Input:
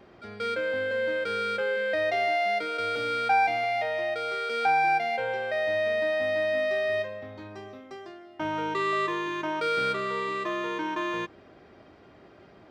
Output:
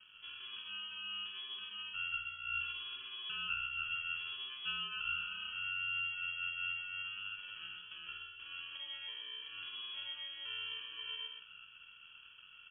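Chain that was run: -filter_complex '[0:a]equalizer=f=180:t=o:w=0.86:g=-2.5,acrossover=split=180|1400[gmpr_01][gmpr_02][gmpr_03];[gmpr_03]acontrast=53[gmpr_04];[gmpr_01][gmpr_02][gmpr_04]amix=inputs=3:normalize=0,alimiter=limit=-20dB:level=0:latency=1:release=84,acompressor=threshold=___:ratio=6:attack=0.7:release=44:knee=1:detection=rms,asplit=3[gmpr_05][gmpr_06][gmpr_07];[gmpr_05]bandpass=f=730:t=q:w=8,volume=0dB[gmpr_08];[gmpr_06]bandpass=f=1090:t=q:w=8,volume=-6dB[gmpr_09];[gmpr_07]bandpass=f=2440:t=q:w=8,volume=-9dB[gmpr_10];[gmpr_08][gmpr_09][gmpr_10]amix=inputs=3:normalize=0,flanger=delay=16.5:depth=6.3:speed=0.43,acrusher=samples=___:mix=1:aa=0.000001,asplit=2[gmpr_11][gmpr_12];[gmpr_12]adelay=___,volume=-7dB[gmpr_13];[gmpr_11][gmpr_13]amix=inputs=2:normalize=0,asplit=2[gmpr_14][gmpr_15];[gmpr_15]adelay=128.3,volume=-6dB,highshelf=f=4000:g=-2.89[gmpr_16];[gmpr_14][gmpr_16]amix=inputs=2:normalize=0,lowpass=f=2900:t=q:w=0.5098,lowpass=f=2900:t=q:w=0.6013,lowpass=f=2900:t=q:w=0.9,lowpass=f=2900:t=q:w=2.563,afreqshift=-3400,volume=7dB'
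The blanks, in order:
-34dB, 33, 48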